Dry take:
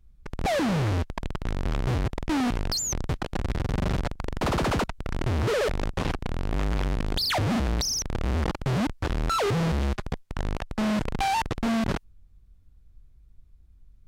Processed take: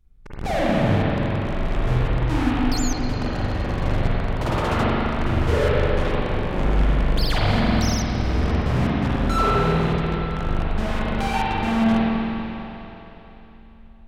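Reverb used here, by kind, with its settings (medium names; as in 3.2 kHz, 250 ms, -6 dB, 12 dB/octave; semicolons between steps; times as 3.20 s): spring tank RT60 3.5 s, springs 40/49 ms, chirp 60 ms, DRR -8.5 dB; trim -3.5 dB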